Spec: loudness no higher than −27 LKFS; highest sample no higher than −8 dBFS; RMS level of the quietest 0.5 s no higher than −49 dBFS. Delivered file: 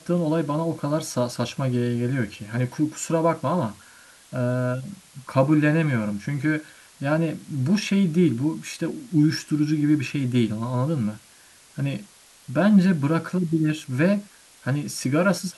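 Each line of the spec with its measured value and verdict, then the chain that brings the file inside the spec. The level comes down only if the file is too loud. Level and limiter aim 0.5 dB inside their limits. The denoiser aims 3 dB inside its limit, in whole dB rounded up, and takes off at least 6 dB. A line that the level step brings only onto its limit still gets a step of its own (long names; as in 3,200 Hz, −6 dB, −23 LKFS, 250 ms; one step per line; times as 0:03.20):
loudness −24.0 LKFS: out of spec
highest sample −7.0 dBFS: out of spec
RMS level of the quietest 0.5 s −52 dBFS: in spec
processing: level −3.5 dB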